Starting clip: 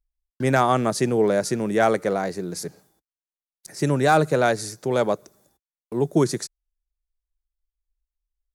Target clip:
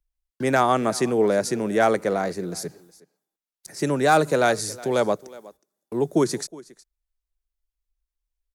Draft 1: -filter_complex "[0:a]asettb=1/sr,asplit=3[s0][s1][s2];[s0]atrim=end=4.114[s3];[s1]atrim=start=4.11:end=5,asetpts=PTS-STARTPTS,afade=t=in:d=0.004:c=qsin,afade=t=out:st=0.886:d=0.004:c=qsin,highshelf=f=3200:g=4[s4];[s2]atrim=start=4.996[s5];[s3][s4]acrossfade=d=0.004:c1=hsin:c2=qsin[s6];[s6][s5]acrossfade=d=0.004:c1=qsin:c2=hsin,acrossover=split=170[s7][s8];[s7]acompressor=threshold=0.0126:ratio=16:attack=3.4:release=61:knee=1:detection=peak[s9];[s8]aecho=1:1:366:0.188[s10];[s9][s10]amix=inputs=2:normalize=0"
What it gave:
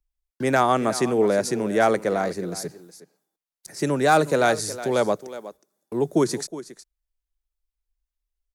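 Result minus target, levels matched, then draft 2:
echo-to-direct +4 dB
-filter_complex "[0:a]asettb=1/sr,asplit=3[s0][s1][s2];[s0]atrim=end=4.114[s3];[s1]atrim=start=4.11:end=5,asetpts=PTS-STARTPTS,afade=t=in:d=0.004:c=qsin,afade=t=out:st=0.886:d=0.004:c=qsin,highshelf=f=3200:g=4[s4];[s2]atrim=start=4.996[s5];[s3][s4]acrossfade=d=0.004:c1=hsin:c2=qsin[s6];[s6][s5]acrossfade=d=0.004:c1=qsin:c2=hsin,acrossover=split=170[s7][s8];[s7]acompressor=threshold=0.0126:ratio=16:attack=3.4:release=61:knee=1:detection=peak[s9];[s8]aecho=1:1:366:0.0944[s10];[s9][s10]amix=inputs=2:normalize=0"

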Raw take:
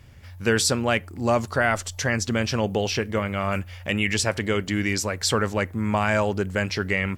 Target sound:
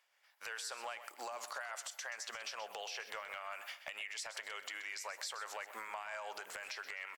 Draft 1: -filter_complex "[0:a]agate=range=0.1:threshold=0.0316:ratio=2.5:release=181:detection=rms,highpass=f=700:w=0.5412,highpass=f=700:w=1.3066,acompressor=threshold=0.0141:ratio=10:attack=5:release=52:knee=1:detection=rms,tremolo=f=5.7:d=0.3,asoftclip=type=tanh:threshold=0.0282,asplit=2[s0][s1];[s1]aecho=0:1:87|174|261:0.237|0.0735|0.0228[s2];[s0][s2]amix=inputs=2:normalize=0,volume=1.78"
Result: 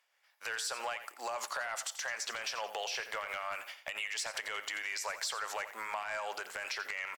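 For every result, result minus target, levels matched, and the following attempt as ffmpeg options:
compression: peak gain reduction -7 dB; echo 41 ms early
-filter_complex "[0:a]agate=range=0.1:threshold=0.0316:ratio=2.5:release=181:detection=rms,highpass=f=700:w=0.5412,highpass=f=700:w=1.3066,acompressor=threshold=0.00562:ratio=10:attack=5:release=52:knee=1:detection=rms,tremolo=f=5.7:d=0.3,asoftclip=type=tanh:threshold=0.0282,asplit=2[s0][s1];[s1]aecho=0:1:87|174|261:0.237|0.0735|0.0228[s2];[s0][s2]amix=inputs=2:normalize=0,volume=1.78"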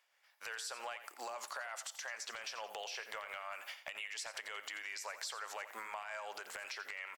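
echo 41 ms early
-filter_complex "[0:a]agate=range=0.1:threshold=0.0316:ratio=2.5:release=181:detection=rms,highpass=f=700:w=0.5412,highpass=f=700:w=1.3066,acompressor=threshold=0.00562:ratio=10:attack=5:release=52:knee=1:detection=rms,tremolo=f=5.7:d=0.3,asoftclip=type=tanh:threshold=0.0282,asplit=2[s0][s1];[s1]aecho=0:1:128|256|384:0.237|0.0735|0.0228[s2];[s0][s2]amix=inputs=2:normalize=0,volume=1.78"

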